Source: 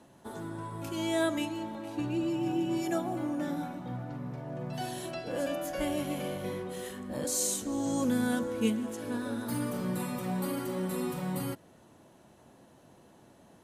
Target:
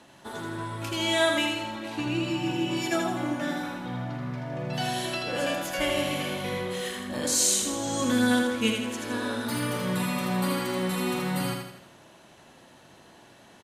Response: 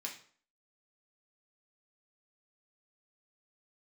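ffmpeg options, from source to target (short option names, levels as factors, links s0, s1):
-af "equalizer=f=2900:t=o:w=3:g=11.5,aecho=1:1:81|162|243|324|405|486:0.631|0.29|0.134|0.0614|0.0283|0.013"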